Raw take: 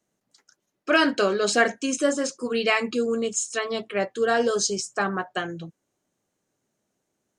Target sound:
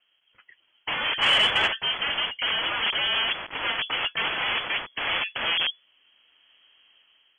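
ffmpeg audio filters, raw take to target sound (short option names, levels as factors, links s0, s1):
-filter_complex "[0:a]asettb=1/sr,asplit=3[s0][s1][s2];[s0]atrim=end=2.394[s3];[s1]atrim=start=2.39:end=2.83,asetpts=PTS-STARTPTS,afade=t=in:d=0.004:c=qsin,afade=t=out:st=0.436:d=0.004:c=qsin,equalizer=f=1200:t=o:w=1.3:g=-5[s4];[s2]atrim=start=2.826[s5];[s3][s4]acrossfade=d=0.004:c1=hsin:c2=qsin[s6];[s6][s5]acrossfade=d=0.004:c1=qsin:c2=hsin,aeval=exprs='0.422*sin(PI/2*5.01*val(0)/0.422)':c=same,asplit=3[s7][s8][s9];[s7]afade=t=out:st=3.99:d=0.02[s10];[s8]asubboost=boost=3.5:cutoff=160,afade=t=in:st=3.99:d=0.02,afade=t=out:st=5.03:d=0.02[s11];[s9]afade=t=in:st=5.03:d=0.02[s12];[s10][s11][s12]amix=inputs=3:normalize=0,dynaudnorm=f=230:g=5:m=2.99,aeval=exprs='(mod(3.55*val(0)+1,2)-1)/3.55':c=same,lowpass=f=2900:t=q:w=0.5098,lowpass=f=2900:t=q:w=0.6013,lowpass=f=2900:t=q:w=0.9,lowpass=f=2900:t=q:w=2.563,afreqshift=-3400,asplit=3[s13][s14][s15];[s13]afade=t=out:st=1.21:d=0.02[s16];[s14]acontrast=68,afade=t=in:st=1.21:d=0.02,afade=t=out:st=1.66:d=0.02[s17];[s15]afade=t=in:st=1.66:d=0.02[s18];[s16][s17][s18]amix=inputs=3:normalize=0,volume=0.376"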